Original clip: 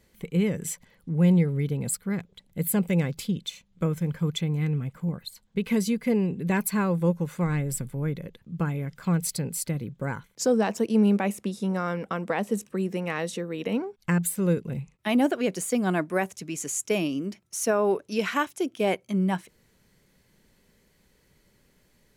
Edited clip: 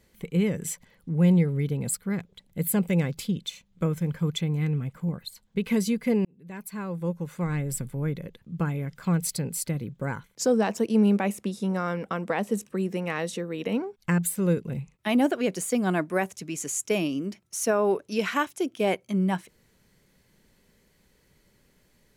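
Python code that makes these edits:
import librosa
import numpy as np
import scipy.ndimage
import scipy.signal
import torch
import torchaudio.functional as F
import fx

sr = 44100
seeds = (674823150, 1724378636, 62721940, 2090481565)

y = fx.edit(x, sr, fx.fade_in_span(start_s=6.25, length_s=1.6), tone=tone)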